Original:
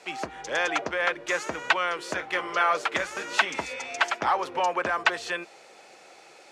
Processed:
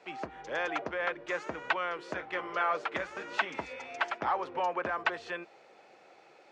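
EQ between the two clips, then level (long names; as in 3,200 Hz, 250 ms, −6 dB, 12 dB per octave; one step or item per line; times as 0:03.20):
head-to-tape spacing loss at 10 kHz 21 dB
−4.0 dB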